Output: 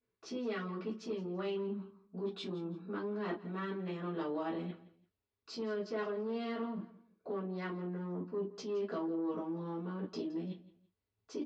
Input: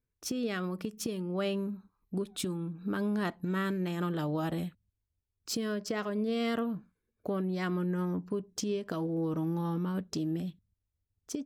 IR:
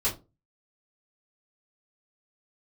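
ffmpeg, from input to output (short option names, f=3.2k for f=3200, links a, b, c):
-filter_complex "[0:a]lowpass=f=5.1k:w=0.5412,lowpass=f=5.1k:w=1.3066[a];[1:a]atrim=start_sample=2205,atrim=end_sample=3528[b];[a][b]afir=irnorm=-1:irlink=0,asoftclip=type=tanh:threshold=-15.5dB,highshelf=f=3.6k:g=-8.5,areverse,acompressor=threshold=-31dB:ratio=12,areverse,highpass=260,aecho=1:1:168|336:0.126|0.0352,volume=-1.5dB"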